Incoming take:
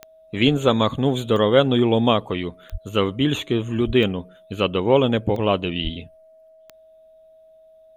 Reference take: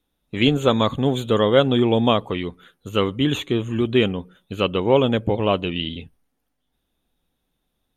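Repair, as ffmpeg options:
ffmpeg -i in.wav -filter_complex "[0:a]adeclick=threshold=4,bandreject=frequency=640:width=30,asplit=3[link_01][link_02][link_03];[link_01]afade=type=out:start_time=2.71:duration=0.02[link_04];[link_02]highpass=frequency=140:width=0.5412,highpass=frequency=140:width=1.3066,afade=type=in:start_time=2.71:duration=0.02,afade=type=out:start_time=2.83:duration=0.02[link_05];[link_03]afade=type=in:start_time=2.83:duration=0.02[link_06];[link_04][link_05][link_06]amix=inputs=3:normalize=0,asplit=3[link_07][link_08][link_09];[link_07]afade=type=out:start_time=3.86:duration=0.02[link_10];[link_08]highpass=frequency=140:width=0.5412,highpass=frequency=140:width=1.3066,afade=type=in:start_time=3.86:duration=0.02,afade=type=out:start_time=3.98:duration=0.02[link_11];[link_09]afade=type=in:start_time=3.98:duration=0.02[link_12];[link_10][link_11][link_12]amix=inputs=3:normalize=0,asplit=3[link_13][link_14][link_15];[link_13]afade=type=out:start_time=5.83:duration=0.02[link_16];[link_14]highpass=frequency=140:width=0.5412,highpass=frequency=140:width=1.3066,afade=type=in:start_time=5.83:duration=0.02,afade=type=out:start_time=5.95:duration=0.02[link_17];[link_15]afade=type=in:start_time=5.95:duration=0.02[link_18];[link_16][link_17][link_18]amix=inputs=3:normalize=0" out.wav

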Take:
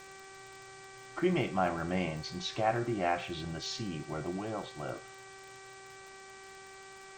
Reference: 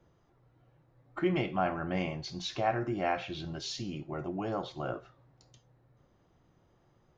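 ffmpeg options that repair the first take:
ffmpeg -i in.wav -af "adeclick=threshold=4,bandreject=frequency=386.4:width_type=h:width=4,bandreject=frequency=772.8:width_type=h:width=4,bandreject=frequency=1159.2:width_type=h:width=4,bandreject=frequency=1545.6:width_type=h:width=4,bandreject=frequency=1932:width_type=h:width=4,bandreject=frequency=2318.4:width_type=h:width=4,afwtdn=0.0022,asetnsamples=nb_out_samples=441:pad=0,asendcmd='4.38 volume volume 3.5dB',volume=0dB" out.wav

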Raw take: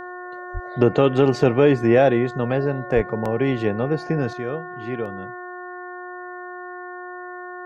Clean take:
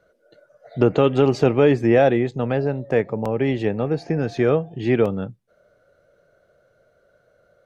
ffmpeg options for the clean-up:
ffmpeg -i in.wav -filter_complex "[0:a]bandreject=frequency=360.2:width_type=h:width=4,bandreject=frequency=720.4:width_type=h:width=4,bandreject=frequency=1080.6:width_type=h:width=4,bandreject=frequency=1440.8:width_type=h:width=4,bandreject=frequency=1801:width_type=h:width=4,asplit=3[link_01][link_02][link_03];[link_01]afade=type=out:start_time=0.53:duration=0.02[link_04];[link_02]highpass=frequency=140:width=0.5412,highpass=frequency=140:width=1.3066,afade=type=in:start_time=0.53:duration=0.02,afade=type=out:start_time=0.65:duration=0.02[link_05];[link_03]afade=type=in:start_time=0.65:duration=0.02[link_06];[link_04][link_05][link_06]amix=inputs=3:normalize=0,asplit=3[link_07][link_08][link_09];[link_07]afade=type=out:start_time=2.95:duration=0.02[link_10];[link_08]highpass=frequency=140:width=0.5412,highpass=frequency=140:width=1.3066,afade=type=in:start_time=2.95:duration=0.02,afade=type=out:start_time=3.07:duration=0.02[link_11];[link_09]afade=type=in:start_time=3.07:duration=0.02[link_12];[link_10][link_11][link_12]amix=inputs=3:normalize=0,asetnsamples=nb_out_samples=441:pad=0,asendcmd='4.33 volume volume 10dB',volume=0dB" out.wav

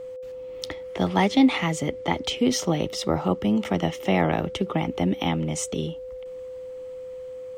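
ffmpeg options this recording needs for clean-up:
ffmpeg -i in.wav -af "bandreject=frequency=510:width=30" out.wav

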